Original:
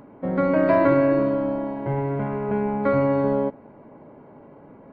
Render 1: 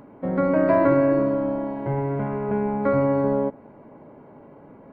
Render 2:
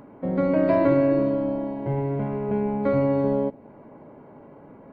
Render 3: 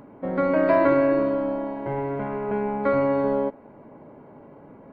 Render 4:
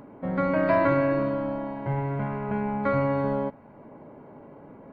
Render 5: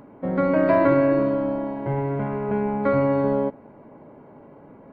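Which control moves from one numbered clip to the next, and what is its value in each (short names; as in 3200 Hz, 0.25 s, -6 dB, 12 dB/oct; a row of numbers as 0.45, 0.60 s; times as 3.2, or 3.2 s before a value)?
dynamic EQ, frequency: 3600, 1400, 130, 380, 9400 Hz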